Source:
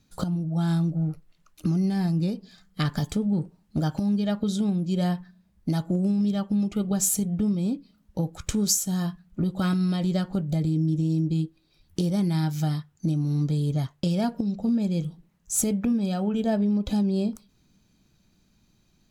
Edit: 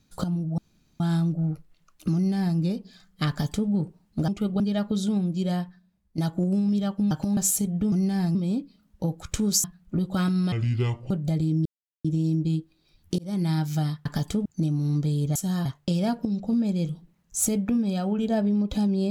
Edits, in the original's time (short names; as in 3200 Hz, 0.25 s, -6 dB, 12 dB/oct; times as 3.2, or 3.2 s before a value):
0.58 insert room tone 0.42 s
1.73–2.16 copy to 7.5
2.87–3.27 copy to 12.91
3.86–4.12 swap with 6.63–6.95
4.8–5.7 fade out, to -11.5 dB
8.79–9.09 move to 13.81
9.97–10.35 speed 65%
10.9 insert silence 0.39 s
12.04–12.29 fade in